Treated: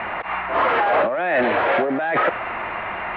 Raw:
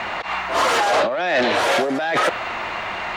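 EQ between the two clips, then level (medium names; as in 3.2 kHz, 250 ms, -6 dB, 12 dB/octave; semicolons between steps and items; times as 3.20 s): inverse Chebyshev low-pass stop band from 9.4 kHz, stop band 70 dB; 0.0 dB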